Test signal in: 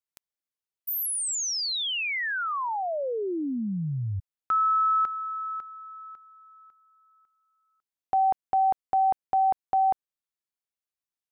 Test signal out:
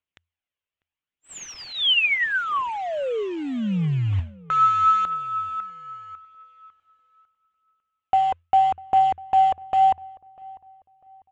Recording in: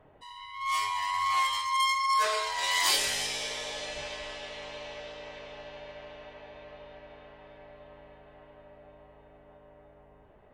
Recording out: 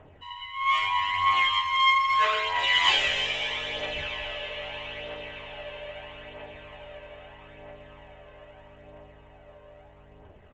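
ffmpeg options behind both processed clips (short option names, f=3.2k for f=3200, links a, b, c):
-filter_complex "[0:a]equalizer=f=85:t=o:w=0.21:g=12,aresample=16000,acrusher=bits=5:mode=log:mix=0:aa=0.000001,aresample=44100,aphaser=in_gain=1:out_gain=1:delay=2:decay=0.39:speed=0.78:type=triangular,highshelf=f=3.8k:t=q:w=3:g=-9,asplit=2[a][b];[b]adelay=647,lowpass=f=1.4k:p=1,volume=-22dB,asplit=2[c][d];[d]adelay=647,lowpass=f=1.4k:p=1,volume=0.37,asplit=2[e][f];[f]adelay=647,lowpass=f=1.4k:p=1,volume=0.37[g];[a][c][e][g]amix=inputs=4:normalize=0,volume=2.5dB"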